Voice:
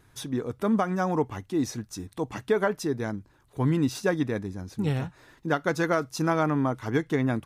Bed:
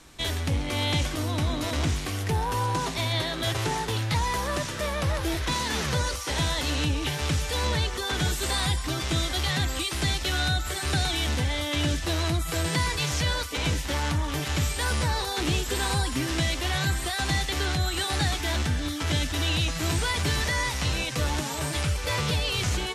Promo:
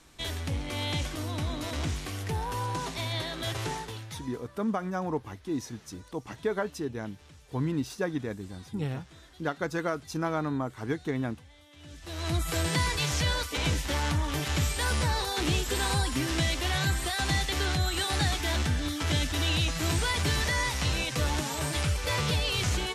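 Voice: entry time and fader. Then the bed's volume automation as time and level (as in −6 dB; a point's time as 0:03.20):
3.95 s, −5.5 dB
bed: 0:03.71 −5.5 dB
0:04.54 −27.5 dB
0:11.76 −27.5 dB
0:12.36 −1.5 dB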